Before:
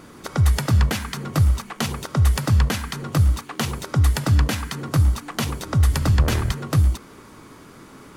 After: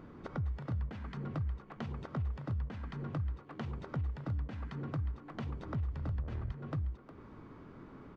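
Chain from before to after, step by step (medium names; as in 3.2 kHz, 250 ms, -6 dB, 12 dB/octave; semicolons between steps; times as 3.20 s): bass shelf 140 Hz +5 dB; compression 5:1, threshold -28 dBFS, peak gain reduction 18 dB; tape spacing loss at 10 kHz 38 dB; speakerphone echo 360 ms, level -10 dB; trim -7 dB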